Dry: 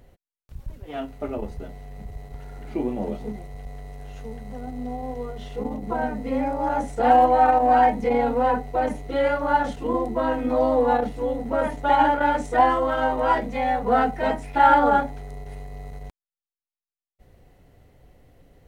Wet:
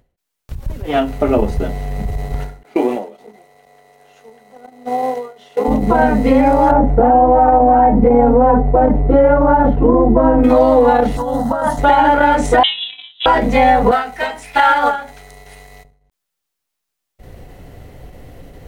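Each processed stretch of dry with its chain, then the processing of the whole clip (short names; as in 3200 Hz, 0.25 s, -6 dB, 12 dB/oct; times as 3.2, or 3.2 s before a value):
2.63–5.68 HPF 430 Hz + gate -38 dBFS, range -17 dB
6.71–10.44 LPF 1000 Hz + low shelf 270 Hz +6 dB + compressor 2:1, threshold -20 dBFS
11.17–11.79 HPF 170 Hz 6 dB/oct + negative-ratio compressor -28 dBFS + fixed phaser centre 980 Hz, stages 4
12.63–13.26 G.711 law mismatch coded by mu + gate -20 dBFS, range -39 dB + inverted band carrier 3900 Hz
13.91–15.85 tilt shelf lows -9.5 dB, about 790 Hz + resonator 62 Hz, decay 0.19 s, mix 50% + upward expander, over -36 dBFS
whole clip: compressor, threshold -23 dBFS; maximiser +18 dB; ending taper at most 120 dB/s; gain -1 dB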